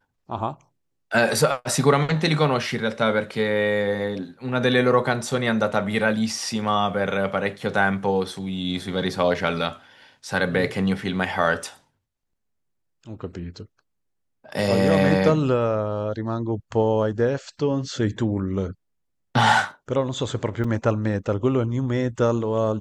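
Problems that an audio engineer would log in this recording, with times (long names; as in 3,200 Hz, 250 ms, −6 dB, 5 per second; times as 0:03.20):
0:20.64: drop-out 4.7 ms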